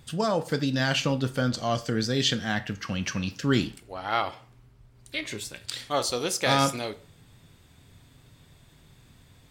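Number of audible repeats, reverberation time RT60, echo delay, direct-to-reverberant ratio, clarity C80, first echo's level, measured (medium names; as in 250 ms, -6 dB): no echo, 0.45 s, no echo, 11.0 dB, 21.5 dB, no echo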